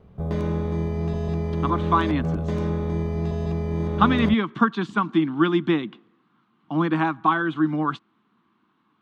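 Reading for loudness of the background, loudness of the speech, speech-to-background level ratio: -26.5 LUFS, -23.0 LUFS, 3.5 dB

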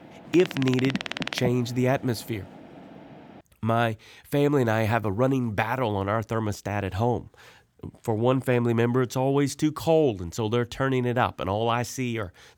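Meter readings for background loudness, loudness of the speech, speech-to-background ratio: -32.5 LUFS, -25.5 LUFS, 7.0 dB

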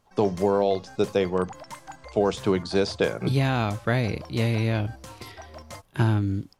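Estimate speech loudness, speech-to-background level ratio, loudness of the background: -25.5 LUFS, 18.5 dB, -44.0 LUFS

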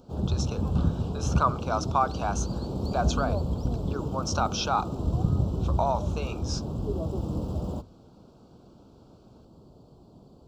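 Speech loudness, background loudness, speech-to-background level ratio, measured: -31.0 LUFS, -30.0 LUFS, -1.0 dB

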